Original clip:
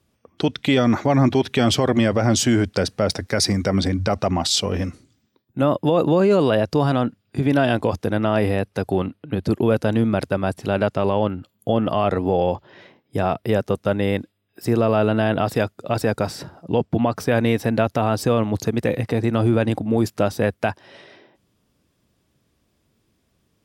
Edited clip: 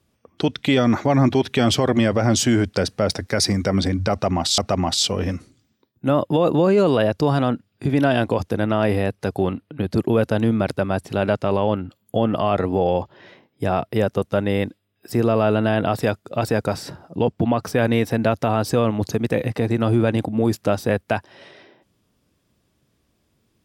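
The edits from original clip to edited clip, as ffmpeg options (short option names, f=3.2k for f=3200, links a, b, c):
-filter_complex "[0:a]asplit=2[a][b];[a]atrim=end=4.582[c];[b]atrim=start=4.108[d];[c][d]acrossfade=d=0.004:c1=hsin:c2=hsin"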